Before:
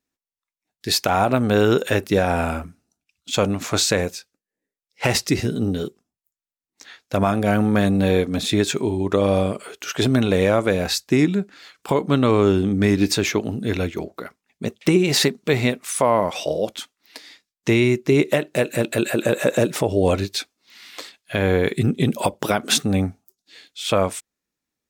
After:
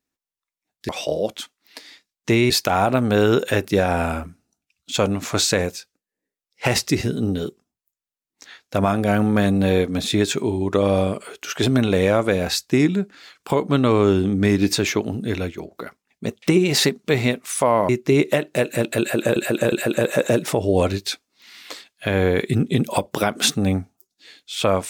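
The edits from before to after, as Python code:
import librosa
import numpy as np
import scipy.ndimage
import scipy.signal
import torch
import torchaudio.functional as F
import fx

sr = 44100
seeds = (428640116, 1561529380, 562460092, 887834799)

y = fx.edit(x, sr, fx.fade_out_to(start_s=13.58, length_s=0.52, floor_db=-6.5),
    fx.move(start_s=16.28, length_s=1.61, to_s=0.89),
    fx.repeat(start_s=19.0, length_s=0.36, count=3), tone=tone)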